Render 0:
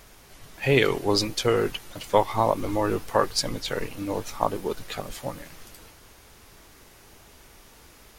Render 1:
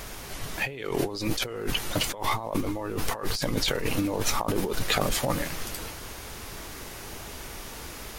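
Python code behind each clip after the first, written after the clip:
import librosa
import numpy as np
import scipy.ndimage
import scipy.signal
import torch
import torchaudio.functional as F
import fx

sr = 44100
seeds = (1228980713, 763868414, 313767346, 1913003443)

y = fx.over_compress(x, sr, threshold_db=-34.0, ratio=-1.0)
y = F.gain(torch.from_numpy(y), 5.0).numpy()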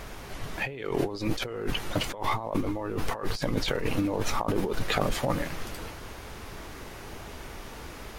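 y = fx.high_shelf(x, sr, hz=4100.0, db=-11.0)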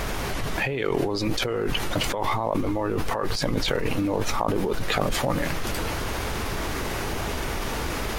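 y = fx.env_flatten(x, sr, amount_pct=70)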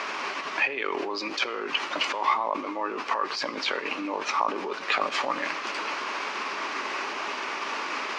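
y = fx.cabinet(x, sr, low_hz=330.0, low_slope=24, high_hz=5500.0, hz=(340.0, 480.0, 710.0, 1100.0, 2500.0, 3600.0), db=(-5, -9, -5, 6, 5, -4))
y = fx.rev_schroeder(y, sr, rt60_s=0.82, comb_ms=27, drr_db=16.5)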